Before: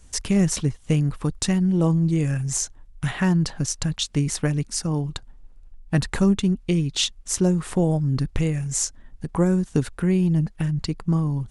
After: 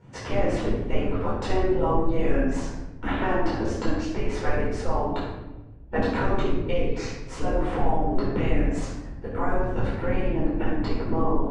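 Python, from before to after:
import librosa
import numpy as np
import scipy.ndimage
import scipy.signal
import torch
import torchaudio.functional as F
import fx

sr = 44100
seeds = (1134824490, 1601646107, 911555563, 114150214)

p1 = scipy.signal.sosfilt(scipy.signal.butter(2, 2700.0, 'lowpass', fs=sr, output='sos'), x)
p2 = fx.spec_gate(p1, sr, threshold_db=-15, keep='weak')
p3 = fx.tilt_shelf(p2, sr, db=7.5, hz=1200.0)
p4 = fx.over_compress(p3, sr, threshold_db=-32.0, ratio=-1.0)
p5 = p3 + (p4 * librosa.db_to_amplitude(-2.5))
p6 = fx.room_shoebox(p5, sr, seeds[0], volume_m3=420.0, walls='mixed', distance_m=4.5)
y = p6 * librosa.db_to_amplitude(-8.0)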